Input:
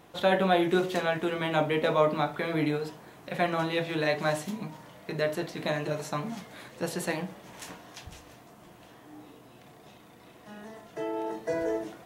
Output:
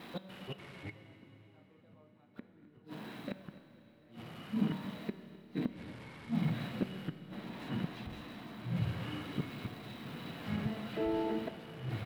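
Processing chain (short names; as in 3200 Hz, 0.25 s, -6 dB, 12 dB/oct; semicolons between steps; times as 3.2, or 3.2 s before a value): switching spikes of -24.5 dBFS; 6.69–9.21 high shelf 5000 Hz -5.5 dB; flipped gate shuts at -23 dBFS, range -39 dB; resonator 190 Hz, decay 1.3 s, mix 60%; small resonant body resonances 230/3900 Hz, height 14 dB, ringing for 35 ms; echoes that change speed 0.291 s, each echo -5 st, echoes 2; air absorption 480 m; echo 0.258 s -19 dB; Schroeder reverb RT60 3.9 s, combs from 26 ms, DRR 12 dB; gain +5 dB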